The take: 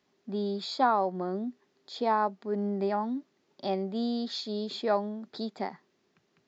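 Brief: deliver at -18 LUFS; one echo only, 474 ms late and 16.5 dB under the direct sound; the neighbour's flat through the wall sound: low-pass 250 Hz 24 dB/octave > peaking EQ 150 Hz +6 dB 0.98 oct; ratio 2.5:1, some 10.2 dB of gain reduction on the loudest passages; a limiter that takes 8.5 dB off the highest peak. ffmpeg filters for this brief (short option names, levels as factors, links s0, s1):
-af "acompressor=threshold=0.0178:ratio=2.5,alimiter=level_in=2:limit=0.0631:level=0:latency=1,volume=0.501,lowpass=f=250:w=0.5412,lowpass=f=250:w=1.3066,equalizer=f=150:t=o:w=0.98:g=6,aecho=1:1:474:0.15,volume=14.1"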